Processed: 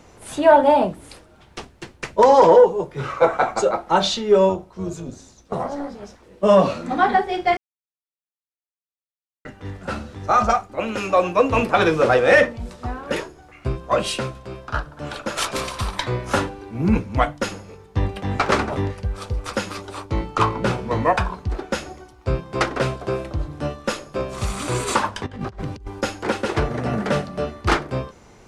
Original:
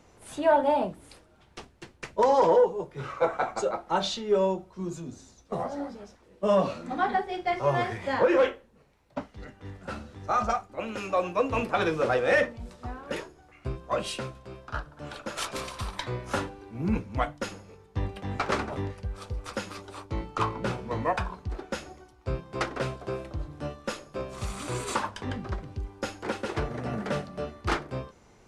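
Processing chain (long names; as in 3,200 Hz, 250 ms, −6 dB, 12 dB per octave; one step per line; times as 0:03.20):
0:04.49–0:06.03: amplitude modulation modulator 280 Hz, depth 50%
0:07.57–0:09.45: silence
0:25.26–0:26.01: compressor whose output falls as the input rises −39 dBFS, ratio −0.5
level +9 dB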